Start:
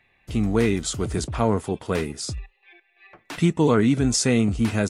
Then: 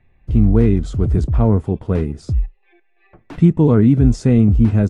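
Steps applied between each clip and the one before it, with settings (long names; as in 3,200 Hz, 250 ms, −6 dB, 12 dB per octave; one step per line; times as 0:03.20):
spectral tilt −4.5 dB per octave
level −2.5 dB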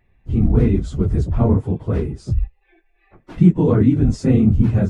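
random phases in long frames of 50 ms
level −2 dB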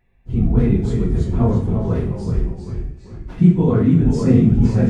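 delay with pitch and tempo change per echo 268 ms, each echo −1 semitone, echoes 3, each echo −6 dB
coupled-rooms reverb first 0.5 s, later 1.6 s, DRR 1.5 dB
level −3 dB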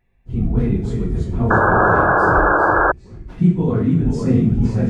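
sound drawn into the spectrogram noise, 0:01.50–0:02.92, 290–1,700 Hz −12 dBFS
level −2.5 dB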